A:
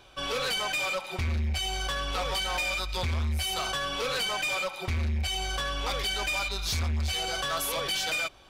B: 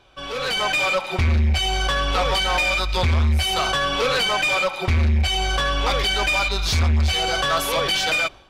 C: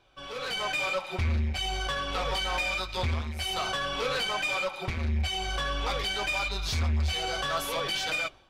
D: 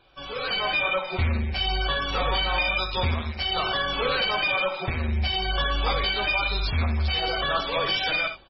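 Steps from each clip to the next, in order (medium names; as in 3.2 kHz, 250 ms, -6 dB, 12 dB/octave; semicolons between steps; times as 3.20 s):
low-pass 4 kHz 6 dB/octave; level rider gain up to 10.5 dB
flange 0.61 Hz, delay 6.1 ms, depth 8.1 ms, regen -57%; trim -5 dB
treble shelf 9.5 kHz +10 dB; multi-tap echo 59/82 ms -10/-15.5 dB; trim +4.5 dB; MP3 16 kbps 24 kHz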